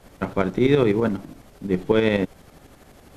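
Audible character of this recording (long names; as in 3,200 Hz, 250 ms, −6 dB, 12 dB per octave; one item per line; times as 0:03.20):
tremolo saw up 12 Hz, depth 60%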